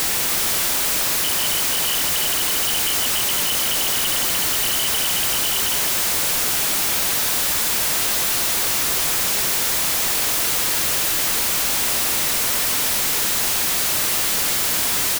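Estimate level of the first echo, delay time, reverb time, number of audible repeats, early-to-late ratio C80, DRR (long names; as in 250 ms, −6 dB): −8.5 dB, 312 ms, no reverb audible, 1, no reverb audible, no reverb audible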